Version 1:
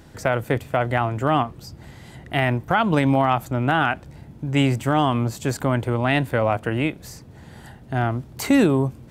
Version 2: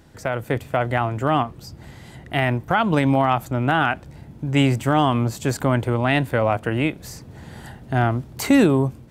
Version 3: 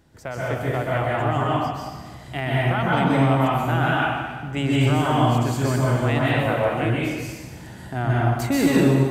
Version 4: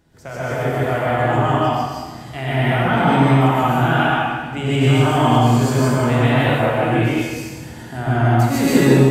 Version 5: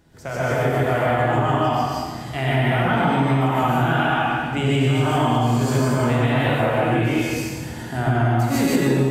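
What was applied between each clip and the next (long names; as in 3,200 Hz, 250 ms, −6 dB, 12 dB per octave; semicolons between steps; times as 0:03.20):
automatic gain control; level −4 dB
dense smooth reverb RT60 1.4 s, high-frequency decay 1×, pre-delay 115 ms, DRR −6 dB; level −7.5 dB
reverb whose tail is shaped and stops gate 180 ms rising, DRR −5.5 dB; level −2 dB
downward compressor, threshold −18 dBFS, peak gain reduction 10 dB; level +2.5 dB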